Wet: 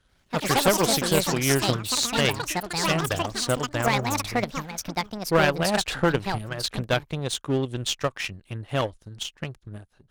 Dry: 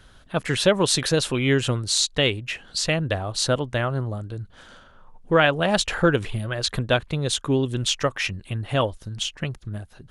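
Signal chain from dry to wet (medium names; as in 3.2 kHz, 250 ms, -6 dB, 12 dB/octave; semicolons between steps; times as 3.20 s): ever faster or slower copies 88 ms, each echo +6 st, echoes 3; power-law waveshaper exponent 1.4; one-sided clip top -22 dBFS; trim +2.5 dB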